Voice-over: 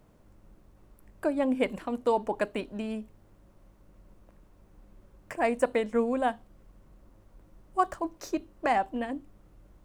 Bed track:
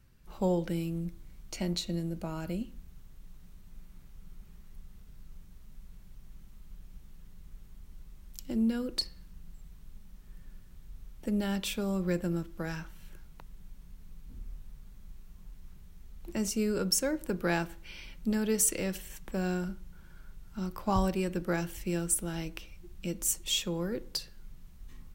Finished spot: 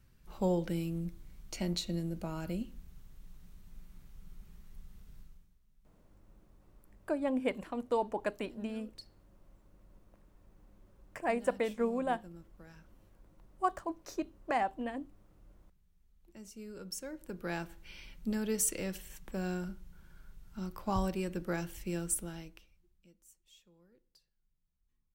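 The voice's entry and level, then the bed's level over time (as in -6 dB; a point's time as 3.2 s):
5.85 s, -5.5 dB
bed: 5.19 s -2 dB
5.6 s -19 dB
16.46 s -19 dB
17.89 s -4.5 dB
22.2 s -4.5 dB
23.23 s -32 dB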